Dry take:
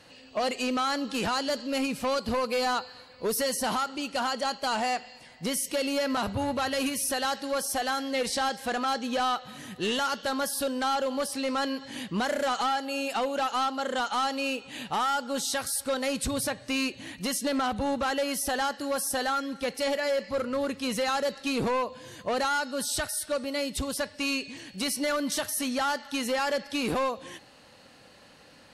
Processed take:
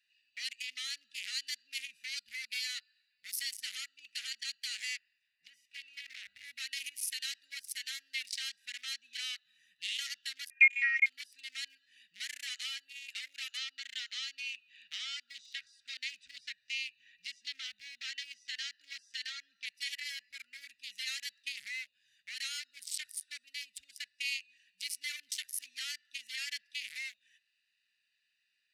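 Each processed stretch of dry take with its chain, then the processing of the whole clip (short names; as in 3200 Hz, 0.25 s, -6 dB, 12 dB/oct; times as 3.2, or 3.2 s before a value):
4.97–6.43 spectral limiter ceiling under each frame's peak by 15 dB + LPF 1500 Hz 6 dB/oct
10.5–11.06 inverted band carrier 2700 Hz + transient shaper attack +10 dB, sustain -8 dB + three-band squash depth 40%
13.57–19.66 LPF 6400 Hz 24 dB/oct + three-band squash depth 40%
whole clip: Wiener smoothing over 41 samples; elliptic high-pass 2000 Hz, stop band 50 dB; gain +2 dB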